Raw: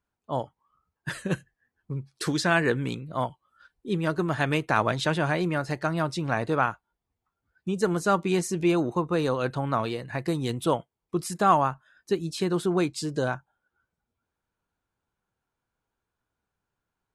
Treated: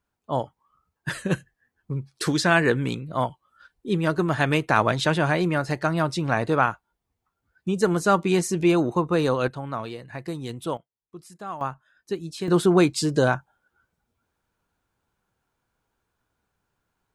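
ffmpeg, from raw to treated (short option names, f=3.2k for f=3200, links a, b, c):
-af "asetnsamples=n=441:p=0,asendcmd='9.48 volume volume -4.5dB;10.77 volume volume -14.5dB;11.61 volume volume -3dB;12.48 volume volume 7dB',volume=3.5dB"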